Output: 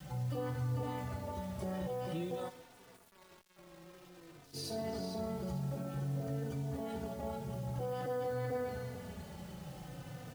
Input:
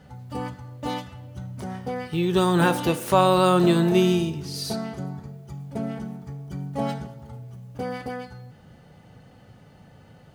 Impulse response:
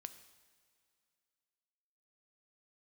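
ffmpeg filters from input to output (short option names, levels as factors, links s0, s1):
-filter_complex "[0:a]acompressor=threshold=0.0224:ratio=16,adynamicequalizer=threshold=0.00224:dfrequency=520:dqfactor=1.3:tfrequency=520:tqfactor=1.3:attack=5:release=100:ratio=0.375:range=3.5:mode=boostabove:tftype=bell,asplit=2[s0][s1];[s1]adelay=444,lowpass=f=3300:p=1,volume=0.631,asplit=2[s2][s3];[s3]adelay=444,lowpass=f=3300:p=1,volume=0.25,asplit=2[s4][s5];[s5]adelay=444,lowpass=f=3300:p=1,volume=0.25[s6];[s0][s2][s4][s6]amix=inputs=4:normalize=0,alimiter=level_in=2.99:limit=0.0631:level=0:latency=1:release=18,volume=0.335,asplit=3[s7][s8][s9];[s7]afade=t=out:st=2.48:d=0.02[s10];[s8]agate=range=0.0224:threshold=0.0447:ratio=3:detection=peak,afade=t=in:st=2.48:d=0.02,afade=t=out:st=4.53:d=0.02[s11];[s9]afade=t=in:st=4.53:d=0.02[s12];[s10][s11][s12]amix=inputs=3:normalize=0[s13];[1:a]atrim=start_sample=2205,asetrate=61740,aresample=44100[s14];[s13][s14]afir=irnorm=-1:irlink=0,acrusher=bits=10:mix=0:aa=0.000001,asplit=2[s15][s16];[s16]adelay=3.3,afreqshift=-0.51[s17];[s15][s17]amix=inputs=2:normalize=1,volume=3.98"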